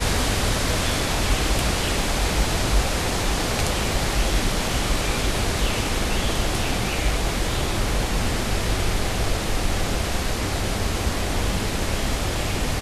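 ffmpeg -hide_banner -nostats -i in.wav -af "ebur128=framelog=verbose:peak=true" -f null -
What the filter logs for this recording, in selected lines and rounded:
Integrated loudness:
  I:         -23.6 LUFS
  Threshold: -33.6 LUFS
Loudness range:
  LRA:         2.3 LU
  Threshold: -43.6 LUFS
  LRA low:   -24.9 LUFS
  LRA high:  -22.5 LUFS
True peak:
  Peak:       -7.9 dBFS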